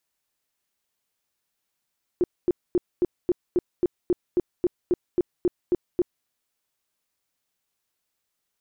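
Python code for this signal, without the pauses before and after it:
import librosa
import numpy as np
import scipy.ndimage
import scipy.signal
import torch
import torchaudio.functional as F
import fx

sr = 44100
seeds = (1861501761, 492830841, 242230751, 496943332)

y = fx.tone_burst(sr, hz=355.0, cycles=10, every_s=0.27, bursts=15, level_db=-16.5)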